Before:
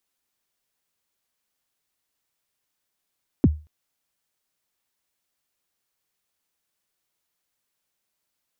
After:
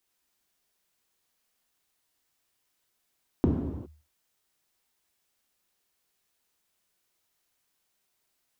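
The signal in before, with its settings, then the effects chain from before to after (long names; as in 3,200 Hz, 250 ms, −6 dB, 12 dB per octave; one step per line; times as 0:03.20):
synth kick length 0.23 s, from 350 Hz, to 76 Hz, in 36 ms, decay 0.30 s, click off, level −8.5 dB
downward compressor, threshold −22 dBFS
reverb whose tail is shaped and stops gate 430 ms falling, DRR 0 dB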